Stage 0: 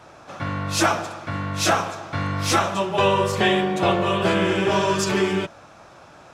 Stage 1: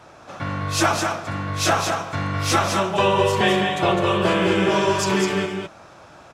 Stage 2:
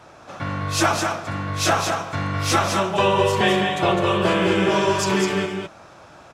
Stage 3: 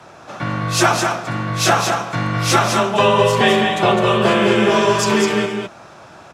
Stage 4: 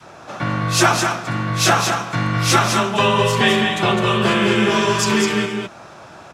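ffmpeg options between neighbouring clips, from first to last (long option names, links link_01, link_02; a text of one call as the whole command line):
ffmpeg -i in.wav -af "aecho=1:1:207:0.562" out.wav
ffmpeg -i in.wav -af anull out.wav
ffmpeg -i in.wav -af "afreqshift=20,volume=4.5dB" out.wav
ffmpeg -i in.wav -af "adynamicequalizer=threshold=0.0316:dfrequency=600:dqfactor=1.1:tfrequency=600:tqfactor=1.1:attack=5:release=100:ratio=0.375:range=4:mode=cutabove:tftype=bell,volume=1dB" out.wav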